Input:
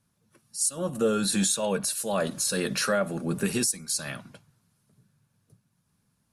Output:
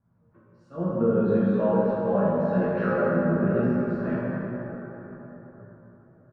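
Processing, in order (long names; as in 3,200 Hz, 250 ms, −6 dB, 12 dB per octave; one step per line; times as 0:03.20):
Bessel low-pass filter 1,000 Hz, order 4
downward compressor, threshold −29 dBFS, peak gain reduction 8.5 dB
double-tracking delay 17 ms −3 dB
dense smooth reverb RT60 4.3 s, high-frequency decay 0.4×, DRR −8 dB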